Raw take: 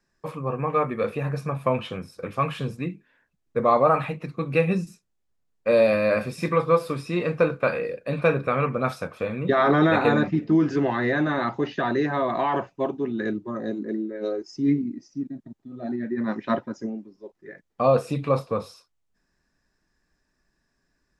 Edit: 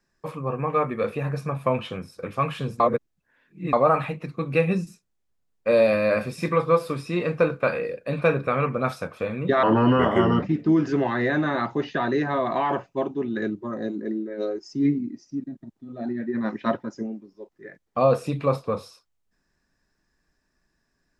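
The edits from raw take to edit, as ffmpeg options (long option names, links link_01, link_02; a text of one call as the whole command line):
ffmpeg -i in.wav -filter_complex "[0:a]asplit=5[link_01][link_02][link_03][link_04][link_05];[link_01]atrim=end=2.802[link_06];[link_02]atrim=start=2.798:end=3.732,asetpts=PTS-STARTPTS,areverse[link_07];[link_03]atrim=start=3.728:end=9.634[link_08];[link_04]atrim=start=9.63:end=10.26,asetpts=PTS-STARTPTS,asetrate=34839,aresample=44100,atrim=end_sample=35168,asetpts=PTS-STARTPTS[link_09];[link_05]atrim=start=10.256[link_10];[link_06][link_07]acrossfade=duration=0.004:curve1=hsin:curve2=hsin[link_11];[link_11][link_08]acrossfade=duration=0.004:curve1=hsin:curve2=hsin[link_12];[link_12][link_09]acrossfade=duration=0.004:curve1=hsin:curve2=hsin[link_13];[link_13][link_10]acrossfade=duration=0.004:curve1=hsin:curve2=hsin" out.wav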